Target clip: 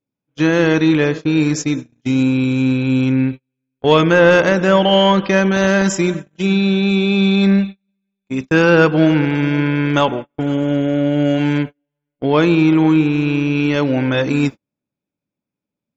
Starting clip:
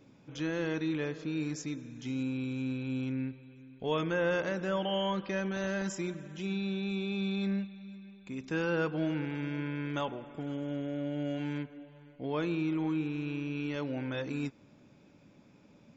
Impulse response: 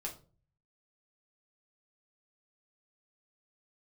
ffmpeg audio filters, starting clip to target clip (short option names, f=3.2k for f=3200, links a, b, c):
-af "aeval=exprs='0.1*(cos(1*acos(clip(val(0)/0.1,-1,1)))-cos(1*PI/2))+0.00794*(cos(3*acos(clip(val(0)/0.1,-1,1)))-cos(3*PI/2))':c=same,apsyclip=22.5dB,agate=range=-44dB:threshold=-20dB:ratio=16:detection=peak,volume=-1.5dB"